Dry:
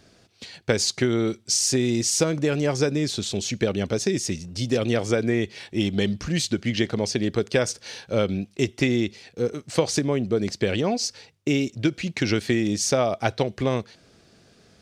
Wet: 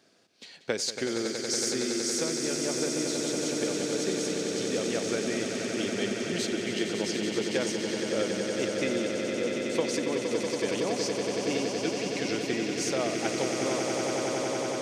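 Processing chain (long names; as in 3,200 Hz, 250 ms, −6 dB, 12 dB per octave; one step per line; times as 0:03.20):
on a send: echo that builds up and dies away 93 ms, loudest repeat 8, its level −8 dB
on the sum: speech leveller 2 s
high-pass filter 240 Hz 12 dB per octave
level −8.5 dB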